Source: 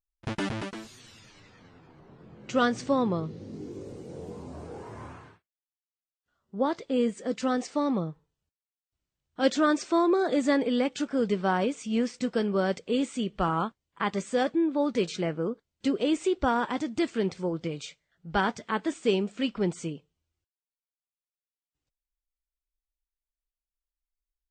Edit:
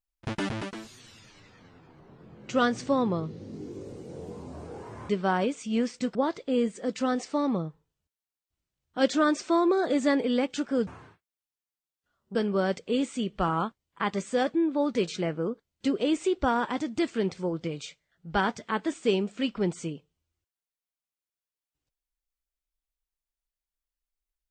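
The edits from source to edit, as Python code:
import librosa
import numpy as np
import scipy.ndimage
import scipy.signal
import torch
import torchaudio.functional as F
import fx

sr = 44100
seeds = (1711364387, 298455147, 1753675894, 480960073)

y = fx.edit(x, sr, fx.swap(start_s=5.09, length_s=1.48, other_s=11.29, other_length_s=1.06), tone=tone)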